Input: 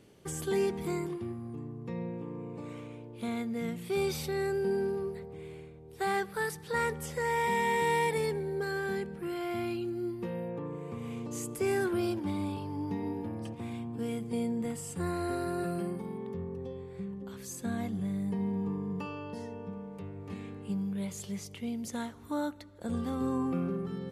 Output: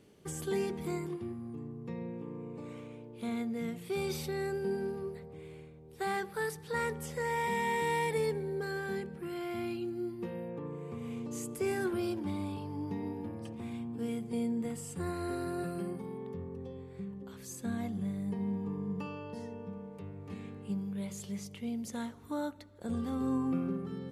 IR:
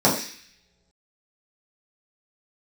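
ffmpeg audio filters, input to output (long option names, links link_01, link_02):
-filter_complex "[0:a]asplit=2[link_01][link_02];[1:a]atrim=start_sample=2205,asetrate=35721,aresample=44100,lowpass=1100[link_03];[link_02][link_03]afir=irnorm=-1:irlink=0,volume=-35dB[link_04];[link_01][link_04]amix=inputs=2:normalize=0,volume=-3dB"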